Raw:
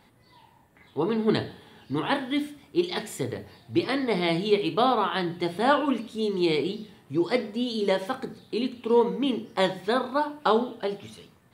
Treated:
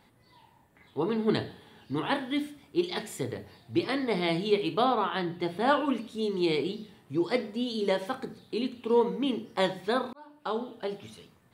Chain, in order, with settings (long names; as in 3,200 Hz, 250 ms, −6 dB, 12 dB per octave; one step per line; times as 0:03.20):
0:04.84–0:05.68: parametric band 8,700 Hz −5.5 dB 1.8 octaves
0:10.13–0:11.00: fade in
level −3 dB